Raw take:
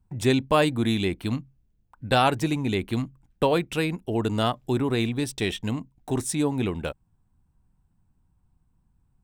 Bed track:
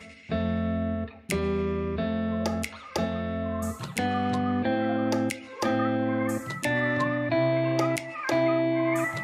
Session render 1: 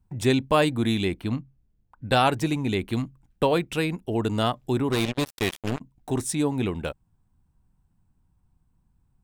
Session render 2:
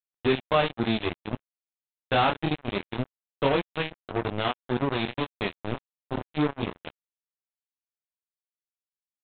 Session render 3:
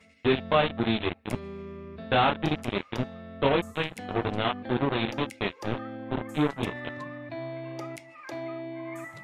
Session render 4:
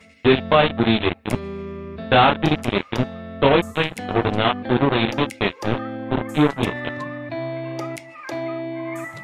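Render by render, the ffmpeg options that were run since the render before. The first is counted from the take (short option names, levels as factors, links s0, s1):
-filter_complex "[0:a]asettb=1/sr,asplit=3[s0][s1][s2];[s0]atrim=end=1.214[s3];[s1]atrim=start=1.21:end=2.09,asetpts=PTS-STARTPTS,afade=t=in:d=0.004:c=qsin,afade=t=out:st=0.876:d=0.004:c=qsin,highshelf=f=3600:g=-9[s4];[s2]atrim=start=2.086[s5];[s3][s4]acrossfade=d=0.004:c1=hsin:c2=qsin[s6];[s6][s5]acrossfade=d=0.004:c1=qsin:c2=hsin,asplit=3[s7][s8][s9];[s7]afade=t=out:st=4.91:d=0.02[s10];[s8]acrusher=bits=3:mix=0:aa=0.5,afade=t=in:st=4.91:d=0.02,afade=t=out:st=5.8:d=0.02[s11];[s9]afade=t=in:st=5.8:d=0.02[s12];[s10][s11][s12]amix=inputs=3:normalize=0"
-af "flanger=delay=20:depth=6.7:speed=0.24,aresample=8000,acrusher=bits=3:mix=0:aa=0.5,aresample=44100"
-filter_complex "[1:a]volume=0.237[s0];[0:a][s0]amix=inputs=2:normalize=0"
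-af "volume=2.66,alimiter=limit=0.708:level=0:latency=1"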